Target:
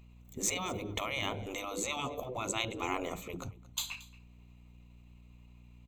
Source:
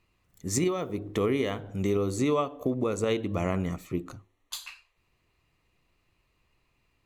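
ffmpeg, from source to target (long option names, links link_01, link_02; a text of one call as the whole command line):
ffmpeg -i in.wav -filter_complex "[0:a]aeval=exprs='val(0)+0.00126*(sin(2*PI*60*n/s)+sin(2*PI*2*60*n/s)/2+sin(2*PI*3*60*n/s)/3+sin(2*PI*4*60*n/s)/4+sin(2*PI*5*60*n/s)/5)':channel_layout=same,superequalizer=6b=0.501:10b=0.562:11b=0.355:14b=0.398:16b=0.316,afftfilt=real='re*lt(hypot(re,im),0.0891)':imag='im*lt(hypot(re,im),0.0891)':win_size=1024:overlap=0.75,atempo=1.2,asplit=2[link_01][link_02];[link_02]aecho=0:1:227:0.0944[link_03];[link_01][link_03]amix=inputs=2:normalize=0,volume=4dB" out.wav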